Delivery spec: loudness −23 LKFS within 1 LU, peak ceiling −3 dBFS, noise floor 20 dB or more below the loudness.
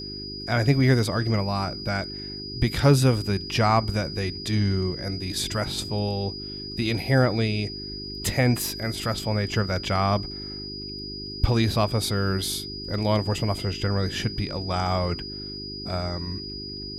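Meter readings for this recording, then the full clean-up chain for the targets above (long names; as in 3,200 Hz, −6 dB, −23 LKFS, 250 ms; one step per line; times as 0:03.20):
mains hum 50 Hz; hum harmonics up to 400 Hz; level of the hum −37 dBFS; interfering tone 4,900 Hz; level of the tone −35 dBFS; integrated loudness −25.5 LKFS; sample peak −6.5 dBFS; target loudness −23.0 LKFS
→ hum removal 50 Hz, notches 8
notch filter 4,900 Hz, Q 30
level +2.5 dB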